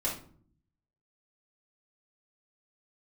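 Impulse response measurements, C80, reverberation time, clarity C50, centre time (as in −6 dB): 12.0 dB, 0.50 s, 6.0 dB, 28 ms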